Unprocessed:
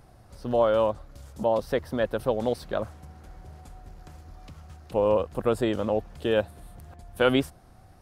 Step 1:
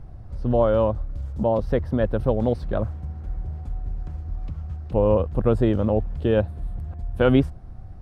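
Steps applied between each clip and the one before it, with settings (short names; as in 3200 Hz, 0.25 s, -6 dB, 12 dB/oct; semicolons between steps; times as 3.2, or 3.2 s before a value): RIAA curve playback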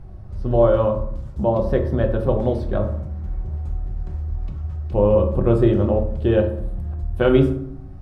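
reverb RT60 0.70 s, pre-delay 3 ms, DRR 2.5 dB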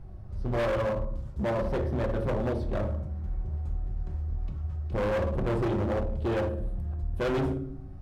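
overloaded stage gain 19.5 dB; gain -5.5 dB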